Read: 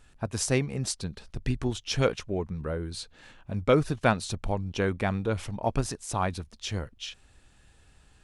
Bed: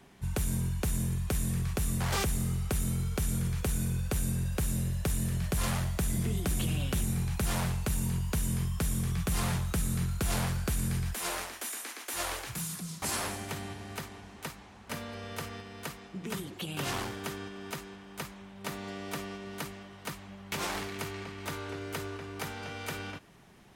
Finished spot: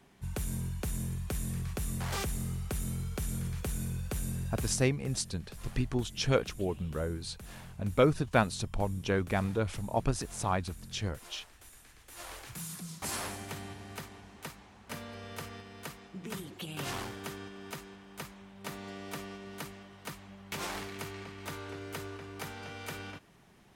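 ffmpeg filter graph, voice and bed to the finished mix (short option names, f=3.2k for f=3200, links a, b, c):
-filter_complex "[0:a]adelay=4300,volume=-2.5dB[a];[1:a]volume=10dB,afade=t=out:st=4.57:d=0.35:silence=0.211349,afade=t=in:st=12.04:d=0.74:silence=0.188365[b];[a][b]amix=inputs=2:normalize=0"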